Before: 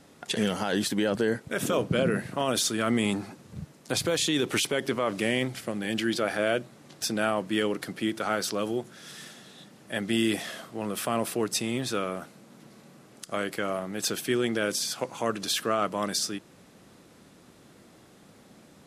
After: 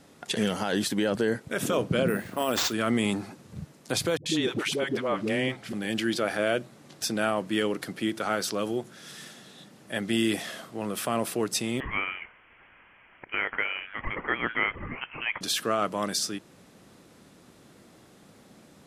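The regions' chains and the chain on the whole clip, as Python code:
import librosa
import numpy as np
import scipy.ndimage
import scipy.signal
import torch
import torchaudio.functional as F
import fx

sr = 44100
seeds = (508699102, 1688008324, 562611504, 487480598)

y = fx.chain(x, sr, fx.peak_eq(hz=140.0, db=-13.5, octaves=0.25),
    fx.resample_bad(factor=4, down='none', up='hold'), at=(2.08, 2.73))
y = fx.chain(y, sr, fx.highpass(hz=86.0, slope=12),
    fx.high_shelf(hz=6000.0, db=-11.0),
    fx.dispersion(late='highs', ms=88.0, hz=420.0), at=(4.17, 5.73))
y = fx.chain(y, sr, fx.highpass(hz=1300.0, slope=12),
    fx.peak_eq(hz=1900.0, db=8.5, octaves=2.6),
    fx.freq_invert(carrier_hz=3600), at=(11.8, 15.41))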